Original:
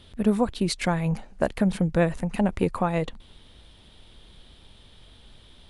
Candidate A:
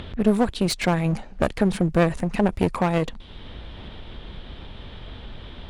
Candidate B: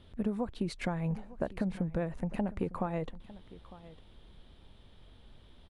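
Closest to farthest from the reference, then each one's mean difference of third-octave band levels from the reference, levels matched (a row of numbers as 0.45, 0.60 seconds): B, A; 4.0, 5.5 decibels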